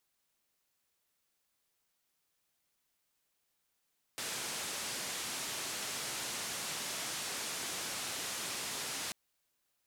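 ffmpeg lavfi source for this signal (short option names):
-f lavfi -i "anoisesrc=c=white:d=4.94:r=44100:seed=1,highpass=f=110,lowpass=f=9000,volume=-30.9dB"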